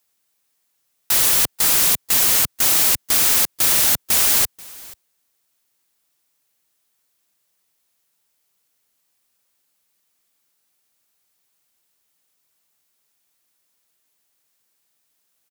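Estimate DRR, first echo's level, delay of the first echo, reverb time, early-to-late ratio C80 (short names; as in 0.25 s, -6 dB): none, -22.5 dB, 0.485 s, none, none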